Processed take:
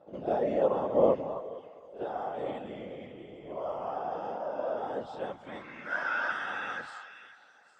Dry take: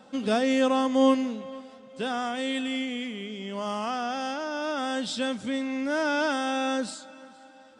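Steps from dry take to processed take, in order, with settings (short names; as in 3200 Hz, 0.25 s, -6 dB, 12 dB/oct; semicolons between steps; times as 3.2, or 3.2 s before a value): pre-echo 60 ms -12.5 dB; band-pass sweep 580 Hz -> 1600 Hz, 5.11–5.79; whisperiser; on a send: delay with a stepping band-pass 0.269 s, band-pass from 980 Hz, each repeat 1.4 oct, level -6 dB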